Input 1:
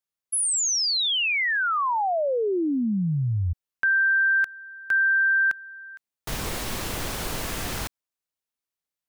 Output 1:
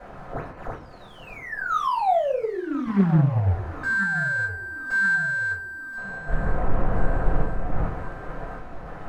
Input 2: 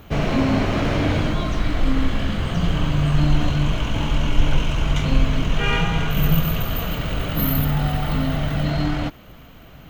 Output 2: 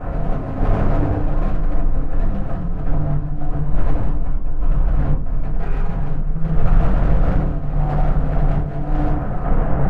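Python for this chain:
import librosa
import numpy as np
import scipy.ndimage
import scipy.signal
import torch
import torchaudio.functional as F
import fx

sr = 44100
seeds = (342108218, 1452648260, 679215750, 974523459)

p1 = fx.delta_mod(x, sr, bps=64000, step_db=-24.0)
p2 = scipy.signal.sosfilt(scipy.signal.butter(4, 1400.0, 'lowpass', fs=sr, output='sos'), p1)
p3 = fx.over_compress(p2, sr, threshold_db=-24.0, ratio=-1.0)
p4 = np.clip(p3, -10.0 ** (-23.0 / 20.0), 10.0 ** (-23.0 / 20.0))
p5 = fx.tremolo_random(p4, sr, seeds[0], hz=3.5, depth_pct=55)
p6 = np.sign(p5) * np.maximum(np.abs(p5) - 10.0 ** (-59.5 / 20.0), 0.0)
p7 = p6 + fx.echo_feedback(p6, sr, ms=1026, feedback_pct=49, wet_db=-16.0, dry=0)
p8 = fx.room_shoebox(p7, sr, seeds[1], volume_m3=140.0, walls='furnished', distance_m=5.3)
p9 = fx.doppler_dist(p8, sr, depth_ms=0.44)
y = F.gain(torch.from_numpy(p9), -6.5).numpy()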